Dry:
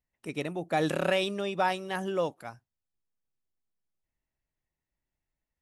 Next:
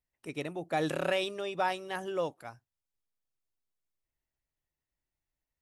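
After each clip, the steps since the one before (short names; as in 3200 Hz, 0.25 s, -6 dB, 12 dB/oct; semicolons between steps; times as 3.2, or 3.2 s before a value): bell 200 Hz -10 dB 0.23 oct; gain -3 dB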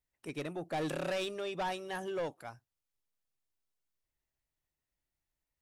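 soft clip -30.5 dBFS, distortion -10 dB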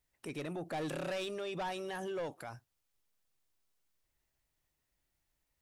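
limiter -40 dBFS, peak gain reduction 9.5 dB; gain +6.5 dB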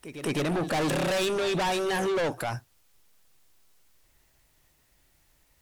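pre-echo 0.208 s -16 dB; sine folder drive 5 dB, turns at -32 dBFS; gain +8 dB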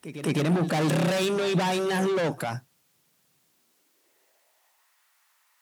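high-pass sweep 160 Hz -> 1100 Hz, 3.4–4.94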